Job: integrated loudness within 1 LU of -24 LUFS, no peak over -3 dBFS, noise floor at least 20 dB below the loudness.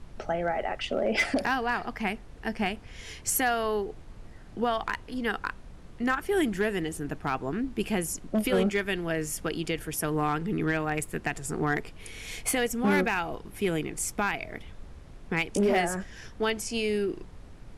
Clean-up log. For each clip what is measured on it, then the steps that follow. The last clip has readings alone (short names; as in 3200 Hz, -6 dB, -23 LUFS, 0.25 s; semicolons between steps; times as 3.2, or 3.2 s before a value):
clipped 0.3%; flat tops at -18.0 dBFS; noise floor -47 dBFS; noise floor target -50 dBFS; loudness -29.5 LUFS; peak -18.0 dBFS; loudness target -24.0 LUFS
-> clip repair -18 dBFS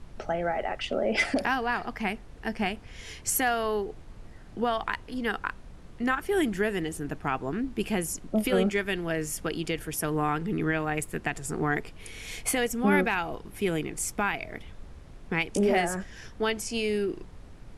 clipped 0.0%; noise floor -47 dBFS; noise floor target -49 dBFS
-> noise print and reduce 6 dB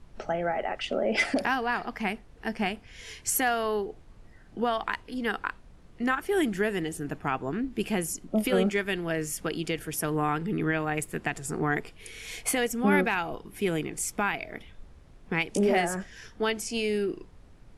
noise floor -53 dBFS; loudness -29.0 LUFS; peak -12.0 dBFS; loudness target -24.0 LUFS
-> gain +5 dB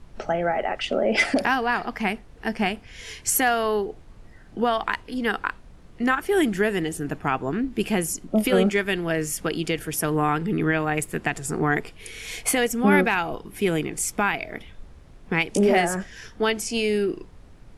loudness -24.0 LUFS; peak -7.0 dBFS; noise floor -48 dBFS